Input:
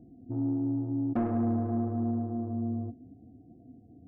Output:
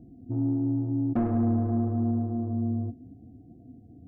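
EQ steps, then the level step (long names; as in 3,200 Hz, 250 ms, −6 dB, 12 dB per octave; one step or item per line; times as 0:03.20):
low-shelf EQ 210 Hz +7 dB
0.0 dB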